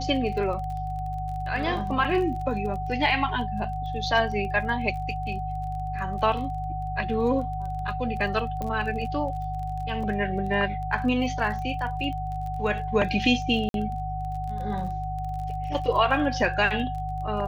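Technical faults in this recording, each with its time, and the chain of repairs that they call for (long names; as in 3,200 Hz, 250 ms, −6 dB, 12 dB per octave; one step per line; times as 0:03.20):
surface crackle 24 per second −34 dBFS
mains hum 50 Hz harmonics 3 −33 dBFS
whistle 750 Hz −31 dBFS
0:08.62: click −19 dBFS
0:13.69–0:13.74: drop-out 52 ms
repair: click removal
hum removal 50 Hz, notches 3
notch filter 750 Hz, Q 30
repair the gap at 0:13.69, 52 ms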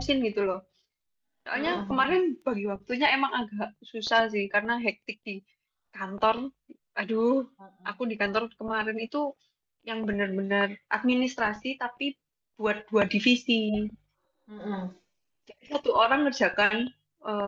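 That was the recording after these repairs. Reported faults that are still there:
0:08.62: click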